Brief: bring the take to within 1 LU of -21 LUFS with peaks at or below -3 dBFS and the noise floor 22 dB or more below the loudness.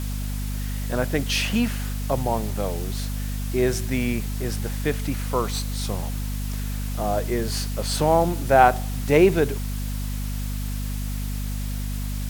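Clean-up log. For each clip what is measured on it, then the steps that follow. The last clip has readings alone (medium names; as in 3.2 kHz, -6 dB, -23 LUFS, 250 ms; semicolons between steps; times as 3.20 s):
hum 50 Hz; highest harmonic 250 Hz; hum level -25 dBFS; noise floor -28 dBFS; noise floor target -47 dBFS; loudness -24.5 LUFS; peak level -2.0 dBFS; loudness target -21.0 LUFS
-> de-hum 50 Hz, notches 5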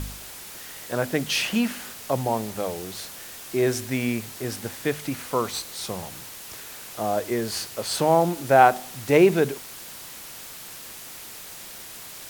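hum not found; noise floor -41 dBFS; noise floor target -47 dBFS
-> noise reduction 6 dB, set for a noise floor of -41 dBFS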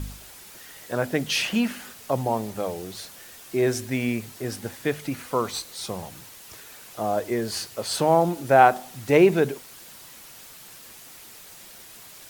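noise floor -46 dBFS; noise floor target -47 dBFS
-> noise reduction 6 dB, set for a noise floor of -46 dBFS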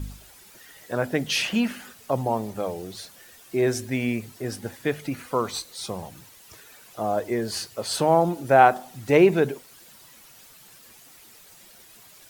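noise floor -51 dBFS; loudness -24.5 LUFS; peak level -2.5 dBFS; loudness target -21.0 LUFS
-> trim +3.5 dB; peak limiter -3 dBFS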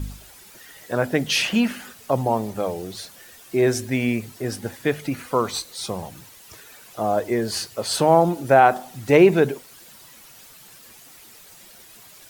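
loudness -21.5 LUFS; peak level -3.0 dBFS; noise floor -47 dBFS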